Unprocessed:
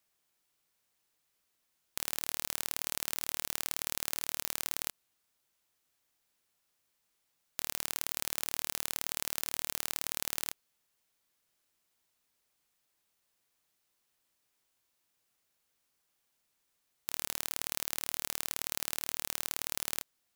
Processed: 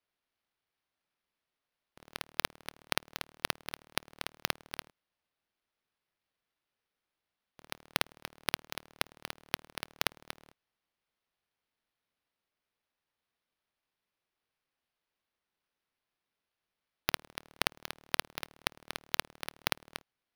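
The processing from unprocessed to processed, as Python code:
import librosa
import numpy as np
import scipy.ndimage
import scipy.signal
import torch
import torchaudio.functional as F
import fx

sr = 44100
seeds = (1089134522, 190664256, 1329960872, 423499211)

y = scipy.signal.sosfilt(scipy.signal.butter(4, 140.0, 'highpass', fs=sr, output='sos'), x)
y = fx.low_shelf(y, sr, hz=350.0, db=-11.0)
y = fx.sample_hold(y, sr, seeds[0], rate_hz=7500.0, jitter_pct=0)
y = fx.upward_expand(y, sr, threshold_db=-49.0, expansion=1.5)
y = y * librosa.db_to_amplitude(-1.0)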